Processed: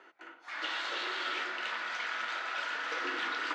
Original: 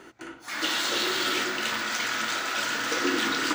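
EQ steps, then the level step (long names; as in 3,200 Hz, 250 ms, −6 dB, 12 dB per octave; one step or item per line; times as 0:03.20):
high-pass filter 590 Hz 12 dB per octave
low-pass filter 2,900 Hz 12 dB per octave
−5.5 dB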